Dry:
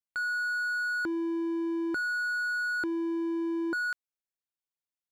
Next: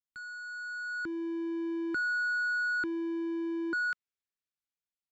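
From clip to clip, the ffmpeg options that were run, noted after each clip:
ffmpeg -i in.wav -filter_complex "[0:a]firequalizer=gain_entry='entry(190,0);entry(660,-23);entry(1300,-11);entry(7500,-5);entry(11000,-30)':delay=0.05:min_phase=1,acrossover=split=420|4000[link_01][link_02][link_03];[link_02]dynaudnorm=framelen=420:gausssize=5:maxgain=12.5dB[link_04];[link_01][link_04][link_03]amix=inputs=3:normalize=0,volume=-1.5dB" out.wav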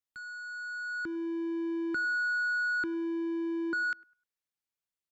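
ffmpeg -i in.wav -filter_complex "[0:a]asplit=2[link_01][link_02];[link_02]adelay=102,lowpass=frequency=1200:poles=1,volume=-22dB,asplit=2[link_03][link_04];[link_04]adelay=102,lowpass=frequency=1200:poles=1,volume=0.4,asplit=2[link_05][link_06];[link_06]adelay=102,lowpass=frequency=1200:poles=1,volume=0.4[link_07];[link_01][link_03][link_05][link_07]amix=inputs=4:normalize=0" out.wav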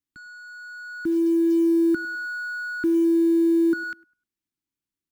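ffmpeg -i in.wav -af "lowshelf=frequency=410:width_type=q:width=3:gain=9,acrusher=bits=8:mode=log:mix=0:aa=0.000001" out.wav

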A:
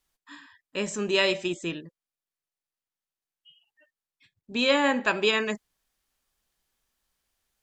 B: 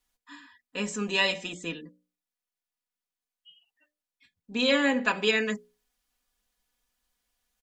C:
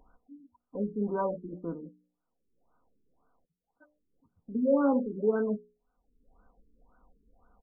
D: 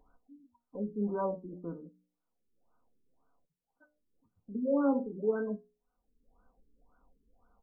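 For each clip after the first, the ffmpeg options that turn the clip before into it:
ffmpeg -i in.wav -af "bandreject=frequency=60:width_type=h:width=6,bandreject=frequency=120:width_type=h:width=6,bandreject=frequency=180:width_type=h:width=6,bandreject=frequency=240:width_type=h:width=6,bandreject=frequency=300:width_type=h:width=6,bandreject=frequency=360:width_type=h:width=6,bandreject=frequency=420:width_type=h:width=6,bandreject=frequency=480:width_type=h:width=6,bandreject=frequency=540:width_type=h:width=6,bandreject=frequency=600:width_type=h:width=6,aecho=1:1:4.1:0.79,volume=-3dB" out.wav
ffmpeg -i in.wav -af "acompressor=mode=upward:threshold=-41dB:ratio=2.5,afftfilt=real='re*lt(b*sr/1024,440*pow(1600/440,0.5+0.5*sin(2*PI*1.9*pts/sr)))':imag='im*lt(b*sr/1024,440*pow(1600/440,0.5+0.5*sin(2*PI*1.9*pts/sr)))':win_size=1024:overlap=0.75,volume=1dB" out.wav
ffmpeg -i in.wav -af "flanger=delay=6.8:depth=4.8:regen=73:speed=0.29:shape=triangular" out.wav

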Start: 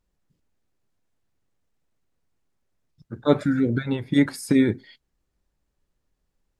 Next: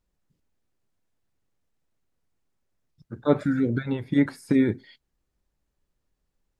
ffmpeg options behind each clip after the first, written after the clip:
ffmpeg -i in.wav -filter_complex "[0:a]acrossover=split=2500[link_01][link_02];[link_02]acompressor=threshold=-45dB:ratio=4:attack=1:release=60[link_03];[link_01][link_03]amix=inputs=2:normalize=0,volume=-2dB" out.wav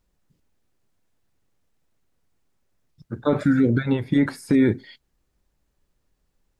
ffmpeg -i in.wav -af "alimiter=limit=-16dB:level=0:latency=1:release=13,volume=6dB" out.wav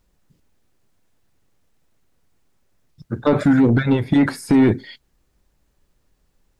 ffmpeg -i in.wav -af "asoftclip=type=tanh:threshold=-14.5dB,volume=6.5dB" out.wav

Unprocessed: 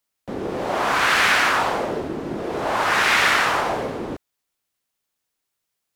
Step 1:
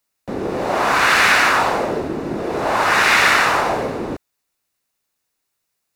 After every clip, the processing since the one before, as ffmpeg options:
ffmpeg -i in.wav -af "bandreject=frequency=3200:width=10,volume=4dB" out.wav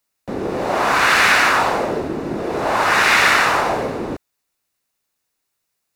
ffmpeg -i in.wav -af anull out.wav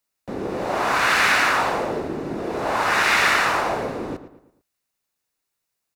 ffmpeg -i in.wav -filter_complex "[0:a]asplit=2[link_01][link_02];[link_02]adelay=112,lowpass=frequency=3200:poles=1,volume=-12.5dB,asplit=2[link_03][link_04];[link_04]adelay=112,lowpass=frequency=3200:poles=1,volume=0.43,asplit=2[link_05][link_06];[link_06]adelay=112,lowpass=frequency=3200:poles=1,volume=0.43,asplit=2[link_07][link_08];[link_08]adelay=112,lowpass=frequency=3200:poles=1,volume=0.43[link_09];[link_01][link_03][link_05][link_07][link_09]amix=inputs=5:normalize=0,volume=-4.5dB" out.wav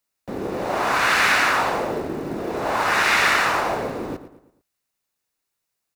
ffmpeg -i in.wav -af "acrusher=bits=7:mode=log:mix=0:aa=0.000001" out.wav

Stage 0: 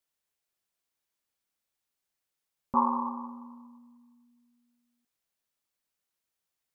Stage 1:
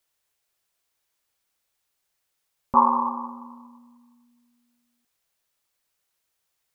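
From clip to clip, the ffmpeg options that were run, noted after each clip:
ffmpeg -i in.wav -af "equalizer=frequency=230:width=1.3:gain=-6,volume=8.5dB" out.wav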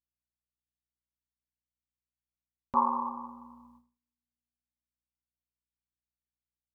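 ffmpeg -i in.wav -af "aeval=exprs='val(0)+0.001*(sin(2*PI*60*n/s)+sin(2*PI*2*60*n/s)/2+sin(2*PI*3*60*n/s)/3+sin(2*PI*4*60*n/s)/4+sin(2*PI*5*60*n/s)/5)':channel_layout=same,agate=range=-32dB:threshold=-49dB:ratio=16:detection=peak,volume=-8.5dB" out.wav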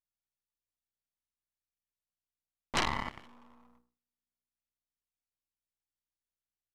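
ffmpeg -i in.wav -af "aeval=exprs='max(val(0),0)':channel_layout=same,aeval=exprs='0.237*(cos(1*acos(clip(val(0)/0.237,-1,1)))-cos(1*PI/2))+0.106*(cos(8*acos(clip(val(0)/0.237,-1,1)))-cos(8*PI/2))':channel_layout=same,aresample=32000,aresample=44100,volume=-2dB" out.wav

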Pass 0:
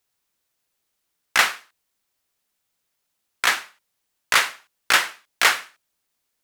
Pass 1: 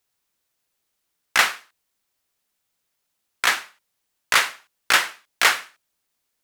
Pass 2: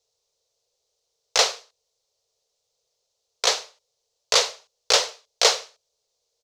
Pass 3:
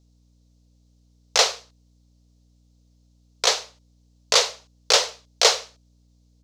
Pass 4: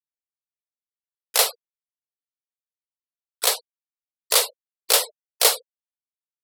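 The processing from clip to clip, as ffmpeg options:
ffmpeg -i in.wav -af anull out.wav
ffmpeg -i in.wav -af "firequalizer=gain_entry='entry(130,0);entry(180,-14);entry(300,-15);entry(450,14);entry(780,1);entry(1600,-13);entry(4100,6);entry(6200,7);entry(9300,-9);entry(15000,-16)':delay=0.05:min_phase=1" out.wav
ffmpeg -i in.wav -af "aeval=exprs='val(0)+0.00112*(sin(2*PI*60*n/s)+sin(2*PI*2*60*n/s)/2+sin(2*PI*3*60*n/s)/3+sin(2*PI*4*60*n/s)/4+sin(2*PI*5*60*n/s)/5)':channel_layout=same,volume=1dB" out.wav
ffmpeg -i in.wav -af "aexciter=amount=14.7:drive=7.6:freq=9200,afftfilt=real='re*gte(hypot(re,im),0.0501)':imag='im*gte(hypot(re,im),0.0501)':win_size=1024:overlap=0.75,acompressor=mode=upward:threshold=-30dB:ratio=2.5,volume=-2.5dB" out.wav

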